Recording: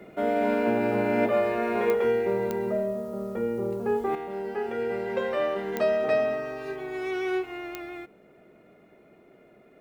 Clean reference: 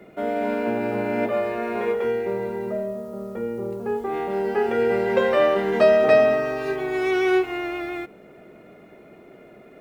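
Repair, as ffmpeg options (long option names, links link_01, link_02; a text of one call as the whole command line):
ffmpeg -i in.wav -af "adeclick=threshold=4,asetnsamples=nb_out_samples=441:pad=0,asendcmd='4.15 volume volume 8.5dB',volume=0dB" out.wav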